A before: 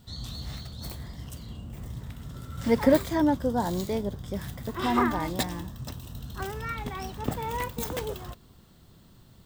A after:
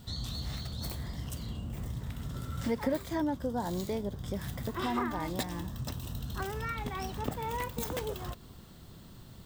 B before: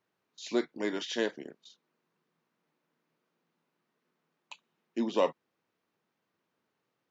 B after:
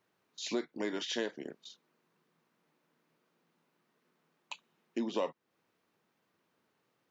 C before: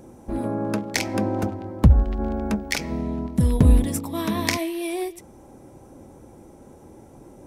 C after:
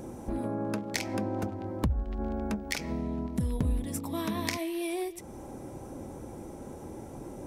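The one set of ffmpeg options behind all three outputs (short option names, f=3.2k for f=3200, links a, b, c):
-af "acompressor=threshold=-39dB:ratio=2.5,volume=4dB"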